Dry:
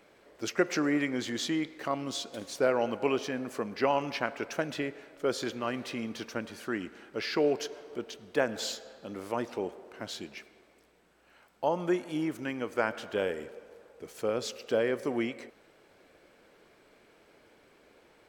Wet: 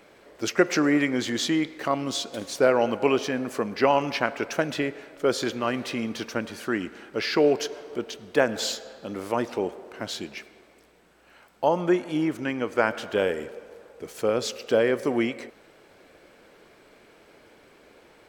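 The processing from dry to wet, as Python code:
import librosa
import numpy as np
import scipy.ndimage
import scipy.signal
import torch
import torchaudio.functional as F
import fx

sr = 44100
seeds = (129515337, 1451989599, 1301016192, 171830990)

y = fx.high_shelf(x, sr, hz=fx.line((11.79, 6700.0), (12.83, 10000.0)), db=-8.0, at=(11.79, 12.83), fade=0.02)
y = y * librosa.db_to_amplitude(6.5)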